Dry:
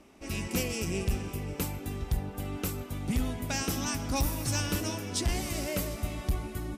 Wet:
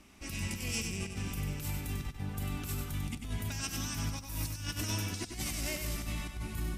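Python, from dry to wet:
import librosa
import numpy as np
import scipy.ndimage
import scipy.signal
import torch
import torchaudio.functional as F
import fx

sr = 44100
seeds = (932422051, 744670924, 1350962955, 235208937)

y = fx.peak_eq(x, sr, hz=500.0, db=-12.5, octaves=2.0)
y = fx.over_compress(y, sr, threshold_db=-37.0, ratio=-0.5)
y = fx.echo_feedback(y, sr, ms=96, feedback_pct=26, wet_db=-6)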